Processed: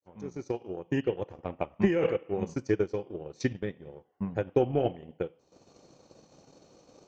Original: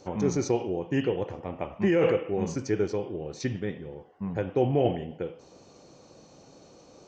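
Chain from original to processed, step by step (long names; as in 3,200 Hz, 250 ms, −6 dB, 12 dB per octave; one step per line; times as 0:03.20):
fade in at the beginning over 1.19 s
transient designer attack +8 dB, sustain −10 dB
level −5 dB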